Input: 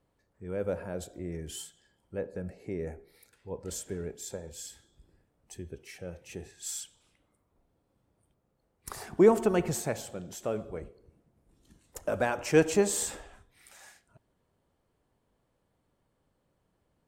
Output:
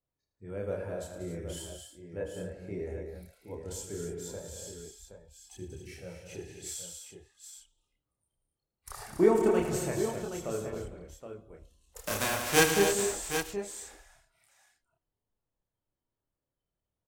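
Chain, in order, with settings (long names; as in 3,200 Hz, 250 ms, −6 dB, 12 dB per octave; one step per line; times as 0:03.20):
0:11.97–0:12.72: spectral envelope flattened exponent 0.3
multi-voice chorus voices 6, 0.33 Hz, delay 29 ms, depth 1.7 ms
noise reduction from a noise print of the clip's start 15 dB
on a send: multi-tap delay 76/113/188/253/280/771 ms −10/−13.5/−9/−10/−12.5/−9 dB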